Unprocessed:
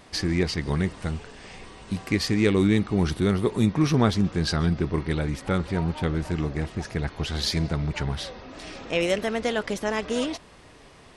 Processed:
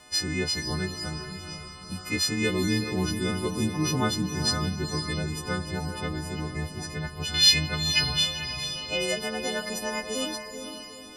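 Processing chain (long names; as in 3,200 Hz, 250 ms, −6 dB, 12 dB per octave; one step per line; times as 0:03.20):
every partial snapped to a pitch grid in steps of 3 semitones
0:07.34–0:08.64: parametric band 2,800 Hz +14 dB 1.2 octaves
on a send: feedback delay with all-pass diffusion 467 ms, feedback 42%, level −7 dB
0:00.77–0:02.35: on the sum: steady tone 1,300 Hz −47 dBFS
level −5.5 dB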